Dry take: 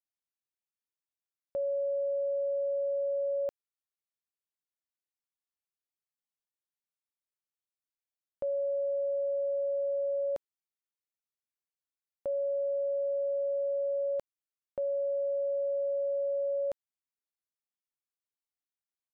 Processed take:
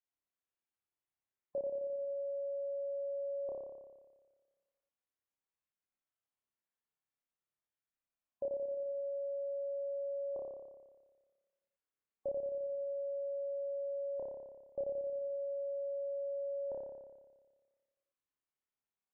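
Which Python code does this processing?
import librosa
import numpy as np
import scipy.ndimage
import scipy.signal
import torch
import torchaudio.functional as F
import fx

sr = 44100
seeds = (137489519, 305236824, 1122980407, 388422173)

y = fx.wiener(x, sr, points=9)
y = fx.spec_gate(y, sr, threshold_db=-30, keep='strong')
y = fx.room_flutter(y, sr, wall_m=5.0, rt60_s=1.4)
y = F.gain(torch.from_numpy(y), -3.5).numpy()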